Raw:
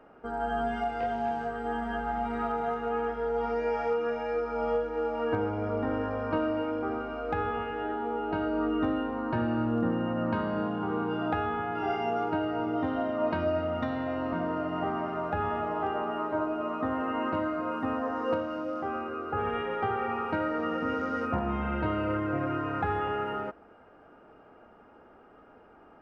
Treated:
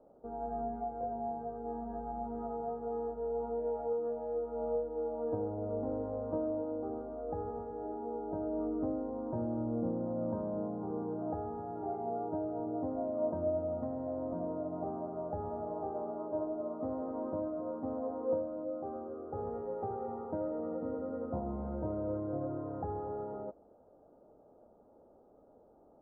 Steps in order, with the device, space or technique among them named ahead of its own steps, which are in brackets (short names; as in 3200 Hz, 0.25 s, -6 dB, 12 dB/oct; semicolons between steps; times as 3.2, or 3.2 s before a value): under water (LPF 820 Hz 24 dB/oct; bell 560 Hz +7.5 dB 0.29 oct); gain -7 dB